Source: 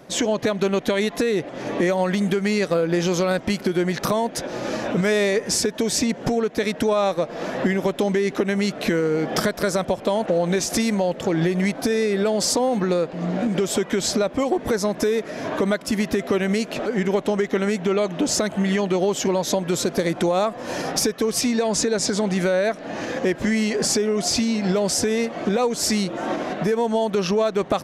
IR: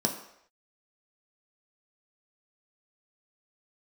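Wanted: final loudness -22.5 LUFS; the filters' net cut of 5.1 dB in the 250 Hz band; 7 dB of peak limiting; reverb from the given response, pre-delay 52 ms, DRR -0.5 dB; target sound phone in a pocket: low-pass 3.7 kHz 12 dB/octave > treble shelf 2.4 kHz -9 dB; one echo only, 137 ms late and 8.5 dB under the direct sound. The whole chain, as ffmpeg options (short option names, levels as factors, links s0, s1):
-filter_complex "[0:a]equalizer=f=250:t=o:g=-7,alimiter=limit=0.158:level=0:latency=1,aecho=1:1:137:0.376,asplit=2[s0][s1];[1:a]atrim=start_sample=2205,adelay=52[s2];[s1][s2]afir=irnorm=-1:irlink=0,volume=0.422[s3];[s0][s3]amix=inputs=2:normalize=0,lowpass=3700,highshelf=f=2400:g=-9,volume=0.631"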